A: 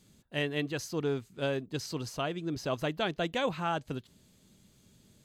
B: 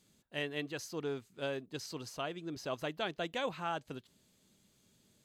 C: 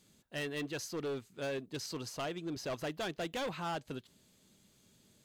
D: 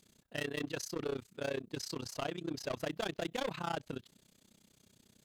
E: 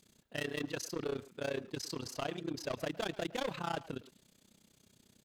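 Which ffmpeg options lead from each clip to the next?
ffmpeg -i in.wav -af "lowshelf=frequency=190:gain=-9,volume=-4.5dB" out.wav
ffmpeg -i in.wav -af "asoftclip=type=hard:threshold=-36.5dB,volume=3dB" out.wav
ffmpeg -i in.wav -af "tremolo=f=31:d=0.947,volume=4dB" out.wav
ffmpeg -i in.wav -filter_complex "[0:a]asplit=2[link_01][link_02];[link_02]adelay=110,highpass=300,lowpass=3400,asoftclip=type=hard:threshold=-38dB,volume=-13dB[link_03];[link_01][link_03]amix=inputs=2:normalize=0" out.wav

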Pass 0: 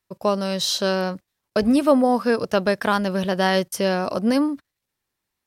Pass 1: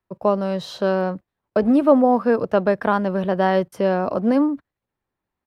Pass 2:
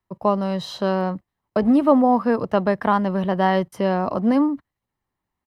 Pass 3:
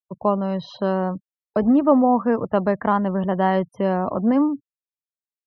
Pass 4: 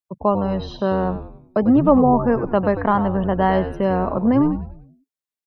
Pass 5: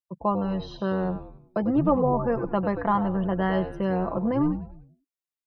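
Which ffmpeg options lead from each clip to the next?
ffmpeg -i in.wav -filter_complex "[0:a]firequalizer=gain_entry='entry(800,0);entry(2100,-8);entry(5500,-20)':delay=0.05:min_phase=1,acrossover=split=190|5000[link_01][link_02][link_03];[link_01]volume=35dB,asoftclip=hard,volume=-35dB[link_04];[link_04][link_02][link_03]amix=inputs=3:normalize=0,volume=2.5dB" out.wav
ffmpeg -i in.wav -af "aecho=1:1:1:0.34" out.wav
ffmpeg -i in.wav -af "afftfilt=real='re*gte(hypot(re,im),0.0126)':imag='im*gte(hypot(re,im),0.0126)':win_size=1024:overlap=0.75,highshelf=frequency=3200:gain=-11.5" out.wav
ffmpeg -i in.wav -filter_complex "[0:a]asplit=6[link_01][link_02][link_03][link_04][link_05][link_06];[link_02]adelay=96,afreqshift=-110,volume=-10dB[link_07];[link_03]adelay=192,afreqshift=-220,volume=-16.9dB[link_08];[link_04]adelay=288,afreqshift=-330,volume=-23.9dB[link_09];[link_05]adelay=384,afreqshift=-440,volume=-30.8dB[link_10];[link_06]adelay=480,afreqshift=-550,volume=-37.7dB[link_11];[link_01][link_07][link_08][link_09][link_10][link_11]amix=inputs=6:normalize=0,volume=1.5dB" out.wav
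ffmpeg -i in.wav -af "aecho=1:1:5.9:0.49,volume=-7dB" out.wav

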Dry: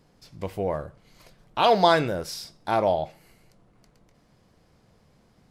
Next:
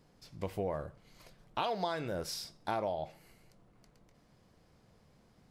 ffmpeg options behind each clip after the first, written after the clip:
ffmpeg -i in.wav -af "acompressor=threshold=-26dB:ratio=10,volume=-4.5dB" out.wav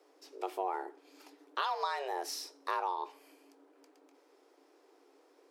ffmpeg -i in.wav -af "afreqshift=270" out.wav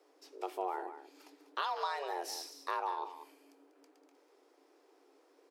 ffmpeg -i in.wav -af "aecho=1:1:193:0.266,volume=-2dB" out.wav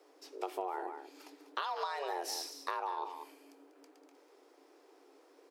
ffmpeg -i in.wav -af "acompressor=threshold=-37dB:ratio=6,volume=4dB" out.wav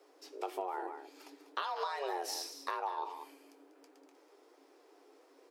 ffmpeg -i in.wav -af "flanger=delay=7.3:depth=2.6:regen=60:speed=1.5:shape=sinusoidal,volume=4dB" out.wav

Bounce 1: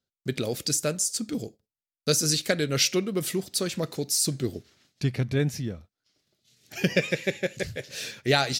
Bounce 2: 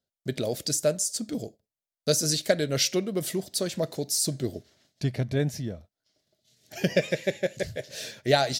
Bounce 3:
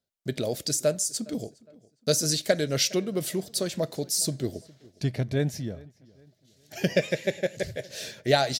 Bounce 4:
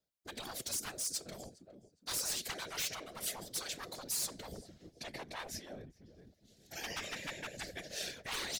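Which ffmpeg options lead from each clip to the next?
ffmpeg -i in.wav -af "equalizer=frequency=630:width_type=o:width=0.33:gain=10,equalizer=frequency=1250:width_type=o:width=0.33:gain=-5,equalizer=frequency=2500:width_type=o:width=0.33:gain=-5,volume=-1.5dB" out.wav
ffmpeg -i in.wav -filter_complex "[0:a]asplit=2[link_01][link_02];[link_02]adelay=411,lowpass=frequency=3100:poles=1,volume=-23dB,asplit=2[link_03][link_04];[link_04]adelay=411,lowpass=frequency=3100:poles=1,volume=0.4,asplit=2[link_05][link_06];[link_06]adelay=411,lowpass=frequency=3100:poles=1,volume=0.4[link_07];[link_01][link_03][link_05][link_07]amix=inputs=4:normalize=0" out.wav
ffmpeg -i in.wav -af "volume=24dB,asoftclip=hard,volume=-24dB,afftfilt=real='re*lt(hypot(re,im),0.0708)':imag='im*lt(hypot(re,im),0.0708)':win_size=1024:overlap=0.75,afftfilt=real='hypot(re,im)*cos(2*PI*random(0))':imag='hypot(re,im)*sin(2*PI*random(1))':win_size=512:overlap=0.75,volume=2.5dB" out.wav

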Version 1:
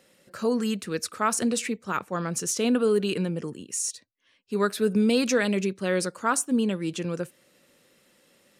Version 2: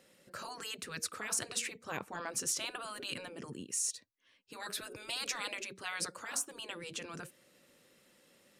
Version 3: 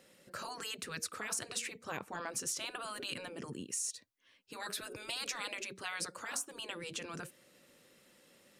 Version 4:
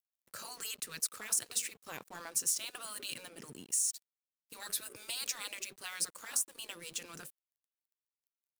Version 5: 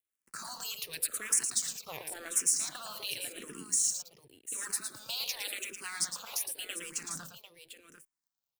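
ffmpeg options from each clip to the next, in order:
ffmpeg -i in.wav -af "afftfilt=real='re*lt(hypot(re,im),0.126)':imag='im*lt(hypot(re,im),0.126)':win_size=1024:overlap=0.75,volume=-4dB" out.wav
ffmpeg -i in.wav -af "acompressor=threshold=-39dB:ratio=2,volume=1.5dB" out.wav
ffmpeg -i in.wav -af "aeval=exprs='sgn(val(0))*max(abs(val(0))-0.002,0)':channel_layout=same,aemphasis=mode=production:type=75kf,volume=-5dB" out.wav
ffmpeg -i in.wav -filter_complex "[0:a]aecho=1:1:112|747:0.447|0.282,asplit=2[link_01][link_02];[link_02]afreqshift=-0.9[link_03];[link_01][link_03]amix=inputs=2:normalize=1,volume=5dB" out.wav

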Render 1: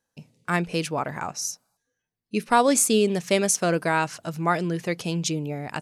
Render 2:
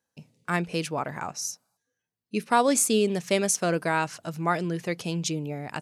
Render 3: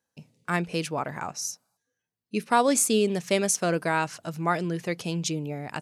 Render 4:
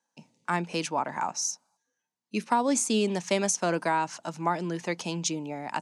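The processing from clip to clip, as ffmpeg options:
ffmpeg -i in.wav -af "highpass=59,volume=-2.5dB" out.wav
ffmpeg -i in.wav -af anull out.wav
ffmpeg -i in.wav -filter_complex "[0:a]highpass=frequency=150:width=0.5412,highpass=frequency=150:width=1.3066,equalizer=frequency=150:width_type=q:width=4:gain=-6,equalizer=frequency=440:width_type=q:width=4:gain=-5,equalizer=frequency=910:width_type=q:width=4:gain=10,equalizer=frequency=6300:width_type=q:width=4:gain=5,lowpass=frequency=9500:width=0.5412,lowpass=frequency=9500:width=1.3066,acrossover=split=450[link_01][link_02];[link_02]acompressor=threshold=-24dB:ratio=6[link_03];[link_01][link_03]amix=inputs=2:normalize=0" out.wav

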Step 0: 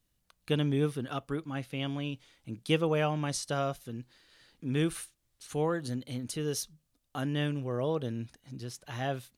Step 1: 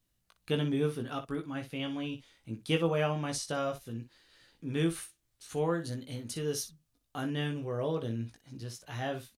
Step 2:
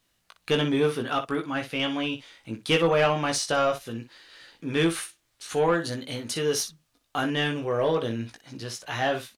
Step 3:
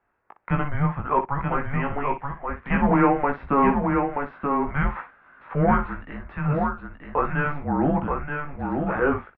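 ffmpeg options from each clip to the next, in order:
ffmpeg -i in.wav -af "aecho=1:1:18|60:0.562|0.266,volume=-2.5dB" out.wav
ffmpeg -i in.wav -filter_complex "[0:a]asplit=2[link_01][link_02];[link_02]highpass=frequency=720:poles=1,volume=15dB,asoftclip=type=tanh:threshold=-15.5dB[link_03];[link_01][link_03]amix=inputs=2:normalize=0,lowpass=frequency=4200:poles=1,volume=-6dB,volume=4.5dB" out.wav
ffmpeg -i in.wav -af "highpass=frequency=210:width_type=q:width=0.5412,highpass=frequency=210:width_type=q:width=1.307,lowpass=frequency=2200:width_type=q:width=0.5176,lowpass=frequency=2200:width_type=q:width=0.7071,lowpass=frequency=2200:width_type=q:width=1.932,afreqshift=-290,equalizer=frequency=830:width=0.49:gain=7.5,aecho=1:1:929:0.596" out.wav

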